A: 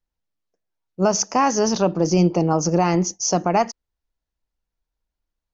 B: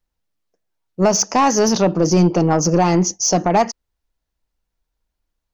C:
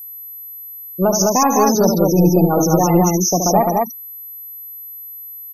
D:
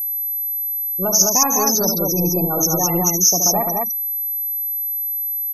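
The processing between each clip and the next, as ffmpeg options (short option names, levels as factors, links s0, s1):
-af "asoftclip=type=tanh:threshold=0.251,volume=1.88"
-af "afftfilt=real='re*gte(hypot(re,im),0.178)':imag='im*gte(hypot(re,im),0.178)':win_size=1024:overlap=0.75,aecho=1:1:72.89|166.2|207:0.447|0.282|0.794,aeval=exprs='val(0)+0.0316*sin(2*PI*12000*n/s)':c=same,volume=0.891"
-af "crystalizer=i=5:c=0,volume=0.398"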